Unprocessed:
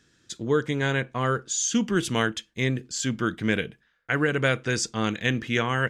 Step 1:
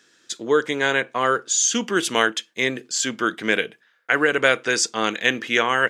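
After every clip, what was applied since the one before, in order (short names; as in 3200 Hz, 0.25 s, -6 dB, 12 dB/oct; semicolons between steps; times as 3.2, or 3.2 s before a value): HPF 390 Hz 12 dB/oct; gain +7 dB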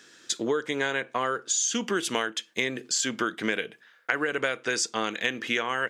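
compressor 6:1, threshold -29 dBFS, peak gain reduction 16.5 dB; gain +4.5 dB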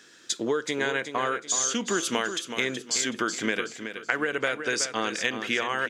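feedback echo 0.374 s, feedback 34%, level -9 dB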